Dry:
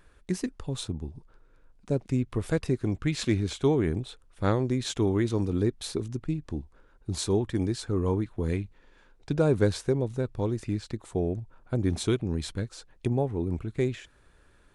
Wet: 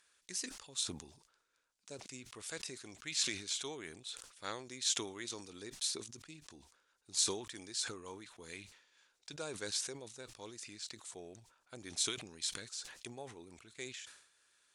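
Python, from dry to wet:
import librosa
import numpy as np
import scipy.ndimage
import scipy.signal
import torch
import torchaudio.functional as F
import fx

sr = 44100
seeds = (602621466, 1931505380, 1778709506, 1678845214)

y = fx.bandpass_q(x, sr, hz=6600.0, q=1.1)
y = fx.sustainer(y, sr, db_per_s=83.0)
y = F.gain(torch.from_numpy(y), 4.0).numpy()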